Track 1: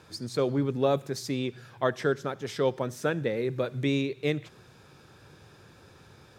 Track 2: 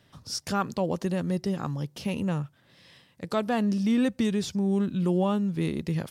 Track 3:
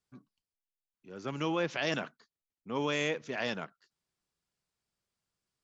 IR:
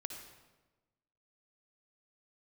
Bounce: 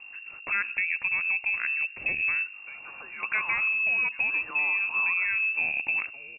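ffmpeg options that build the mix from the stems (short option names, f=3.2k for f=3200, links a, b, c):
-filter_complex "[0:a]adelay=2300,volume=-7dB[a];[1:a]acompressor=threshold=-27dB:ratio=6,lowpass=f=4.1k:t=q:w=2.2,volume=2dB,asplit=3[b][c][d];[c]volume=-14.5dB[e];[2:a]highpass=f=1.7k:t=q:w=8.1,aeval=exprs='clip(val(0),-1,0.0398)':c=same,adelay=1600,volume=-5dB,asplit=2[f][g];[g]volume=-12.5dB[h];[d]apad=whole_len=382999[i];[a][i]sidechaincompress=threshold=-46dB:ratio=8:attack=16:release=200[j];[j][f]amix=inputs=2:normalize=0,highpass=410,acompressor=threshold=-50dB:ratio=2,volume=0dB[k];[3:a]atrim=start_sample=2205[l];[e][h]amix=inputs=2:normalize=0[m];[m][l]afir=irnorm=-1:irlink=0[n];[b][k][n]amix=inputs=3:normalize=0,aeval=exprs='val(0)+0.00631*(sin(2*PI*50*n/s)+sin(2*PI*2*50*n/s)/2+sin(2*PI*3*50*n/s)/3+sin(2*PI*4*50*n/s)/4+sin(2*PI*5*50*n/s)/5)':c=same,lowpass=f=2.4k:t=q:w=0.5098,lowpass=f=2.4k:t=q:w=0.6013,lowpass=f=2.4k:t=q:w=0.9,lowpass=f=2.4k:t=q:w=2.563,afreqshift=-2800"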